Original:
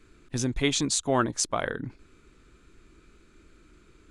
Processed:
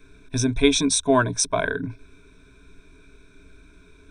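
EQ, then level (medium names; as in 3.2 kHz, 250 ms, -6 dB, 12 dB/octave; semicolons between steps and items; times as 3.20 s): rippled EQ curve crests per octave 1.6, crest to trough 16 dB; +2.0 dB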